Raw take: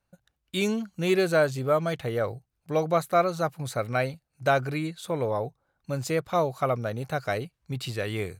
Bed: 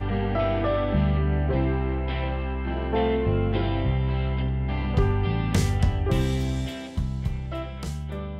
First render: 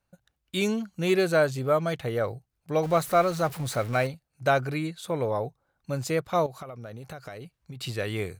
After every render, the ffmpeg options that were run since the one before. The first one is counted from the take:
ffmpeg -i in.wav -filter_complex "[0:a]asettb=1/sr,asplit=3[link_01][link_02][link_03];[link_01]atrim=end=2.834[link_04];[link_02]atrim=start=2.83:end=4.07,asetpts=PTS-STARTPTS,afade=type=in:duration=0.004:curve=qsin,afade=type=out:start_time=1.236:duration=0.004:curve=qsin,aeval=exprs='val(0)+0.5*0.0168*sgn(val(0))':channel_layout=same[link_05];[link_03]atrim=start=4.066[link_06];[link_04][link_05]acrossfade=duration=0.004:curve1=hsin:curve2=qsin[link_07];[link_07][link_06]acrossfade=duration=0.004:curve1=qsin:curve2=hsin,asettb=1/sr,asplit=3[link_08][link_09][link_10];[link_08]atrim=end=6.464[link_11];[link_09]atrim=start=6.46:end=7.81,asetpts=PTS-STARTPTS,afade=type=in:duration=0.004:curve=qsin,afade=type=out:start_time=1.346:duration=0.004:curve=qsin,acompressor=threshold=-36dB:ratio=10:attack=3.2:release=140:knee=1:detection=peak[link_12];[link_10]atrim=start=7.806[link_13];[link_11][link_12]acrossfade=duration=0.004:curve1=hsin:curve2=qsin[link_14];[link_14][link_13]acrossfade=duration=0.004:curve1=qsin:curve2=hsin" out.wav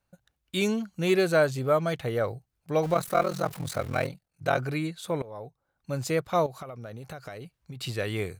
ffmpeg -i in.wav -filter_complex "[0:a]asplit=3[link_01][link_02][link_03];[link_01]afade=type=out:start_time=2.94:duration=0.02[link_04];[link_02]aeval=exprs='val(0)*sin(2*PI*21*n/s)':channel_layout=same,afade=type=in:start_time=2.94:duration=0.02,afade=type=out:start_time=4.57:duration=0.02[link_05];[link_03]afade=type=in:start_time=4.57:duration=0.02[link_06];[link_04][link_05][link_06]amix=inputs=3:normalize=0,asplit=2[link_07][link_08];[link_07]atrim=end=5.22,asetpts=PTS-STARTPTS,afade=type=out:start_time=5.216:duration=0.004:curve=hsin:silence=0.0944061[link_09];[link_08]atrim=start=5.22,asetpts=PTS-STARTPTS,afade=type=in:duration=0.82:silence=0.0944061[link_10];[link_09][link_10]concat=n=2:v=0:a=1" out.wav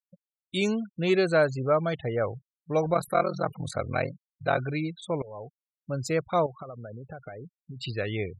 ffmpeg -i in.wav -af "afftfilt=real='re*gte(hypot(re,im),0.0158)':imag='im*gte(hypot(re,im),0.0158)':win_size=1024:overlap=0.75" out.wav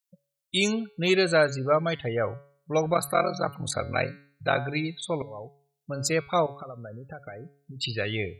ffmpeg -i in.wav -af "highshelf=frequency=2500:gain=11,bandreject=frequency=141.2:width_type=h:width=4,bandreject=frequency=282.4:width_type=h:width=4,bandreject=frequency=423.6:width_type=h:width=4,bandreject=frequency=564.8:width_type=h:width=4,bandreject=frequency=706:width_type=h:width=4,bandreject=frequency=847.2:width_type=h:width=4,bandreject=frequency=988.4:width_type=h:width=4,bandreject=frequency=1129.6:width_type=h:width=4,bandreject=frequency=1270.8:width_type=h:width=4,bandreject=frequency=1412:width_type=h:width=4,bandreject=frequency=1553.2:width_type=h:width=4,bandreject=frequency=1694.4:width_type=h:width=4,bandreject=frequency=1835.6:width_type=h:width=4,bandreject=frequency=1976.8:width_type=h:width=4,bandreject=frequency=2118:width_type=h:width=4,bandreject=frequency=2259.2:width_type=h:width=4,bandreject=frequency=2400.4:width_type=h:width=4,bandreject=frequency=2541.6:width_type=h:width=4,bandreject=frequency=2682.8:width_type=h:width=4,bandreject=frequency=2824:width_type=h:width=4,bandreject=frequency=2965.2:width_type=h:width=4,bandreject=frequency=3106.4:width_type=h:width=4,bandreject=frequency=3247.6:width_type=h:width=4,bandreject=frequency=3388.8:width_type=h:width=4,bandreject=frequency=3530:width_type=h:width=4,bandreject=frequency=3671.2:width_type=h:width=4,bandreject=frequency=3812.4:width_type=h:width=4,bandreject=frequency=3953.6:width_type=h:width=4,bandreject=frequency=4094.8:width_type=h:width=4,bandreject=frequency=4236:width_type=h:width=4,bandreject=frequency=4377.2:width_type=h:width=4,bandreject=frequency=4518.4:width_type=h:width=4,bandreject=frequency=4659.6:width_type=h:width=4,bandreject=frequency=4800.8:width_type=h:width=4" out.wav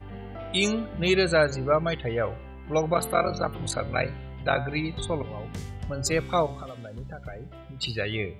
ffmpeg -i in.wav -i bed.wav -filter_complex "[1:a]volume=-14dB[link_01];[0:a][link_01]amix=inputs=2:normalize=0" out.wav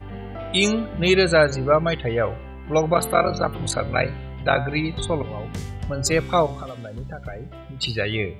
ffmpeg -i in.wav -af "volume=5dB" out.wav

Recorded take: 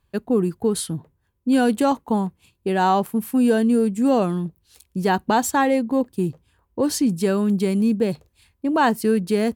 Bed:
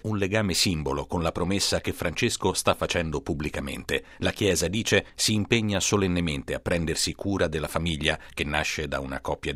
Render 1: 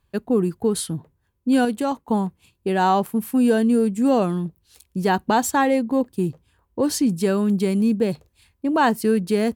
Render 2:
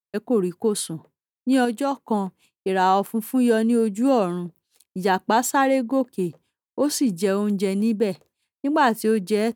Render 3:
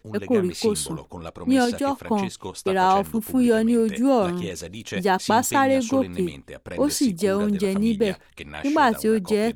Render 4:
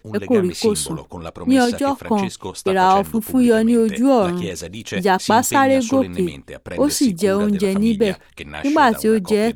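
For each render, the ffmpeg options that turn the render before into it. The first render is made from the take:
ffmpeg -i in.wav -filter_complex "[0:a]asplit=3[link_01][link_02][link_03];[link_01]atrim=end=1.652[link_04];[link_02]atrim=start=1.648:end=2.092,asetpts=PTS-STARTPTS,volume=-4.5dB[link_05];[link_03]atrim=start=2.088[link_06];[link_04][link_05]acrossfade=duration=0.004:curve1=hsin:curve2=hsin[link_07];[link_07][link_06]acrossfade=duration=0.004:curve1=hsin:curve2=hsin" out.wav
ffmpeg -i in.wav -af "highpass=210,agate=range=-33dB:threshold=-44dB:ratio=3:detection=peak" out.wav
ffmpeg -i in.wav -i bed.wav -filter_complex "[1:a]volume=-9.5dB[link_01];[0:a][link_01]amix=inputs=2:normalize=0" out.wav
ffmpeg -i in.wav -af "volume=4.5dB" out.wav

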